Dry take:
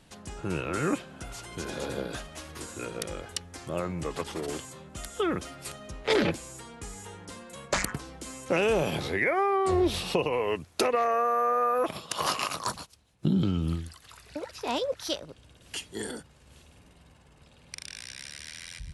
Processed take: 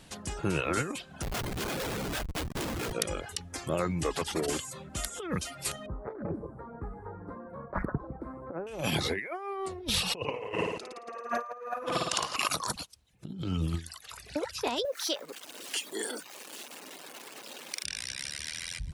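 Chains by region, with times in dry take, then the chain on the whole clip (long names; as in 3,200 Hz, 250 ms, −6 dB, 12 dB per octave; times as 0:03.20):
0:01.22–0:02.93: high-pass filter 61 Hz + parametric band 3,100 Hz +6.5 dB 1.1 octaves + comparator with hysteresis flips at −36.5 dBFS
0:05.86–0:08.67: inverse Chebyshev low-pass filter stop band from 2,700 Hz + delay with a low-pass on its return 155 ms, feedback 30%, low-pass 700 Hz, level −11 dB
0:10.19–0:12.36: low-pass filter 9,000 Hz 24 dB per octave + flutter between parallel walls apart 9.5 metres, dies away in 1.3 s
0:14.85–0:17.84: converter with a step at zero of −43 dBFS + high-pass filter 280 Hz 24 dB per octave + downward compressor 1.5 to 1, threshold −41 dBFS
whole clip: reverb reduction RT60 0.58 s; high-shelf EQ 2,500 Hz +3.5 dB; compressor whose output falls as the input rises −31 dBFS, ratio −0.5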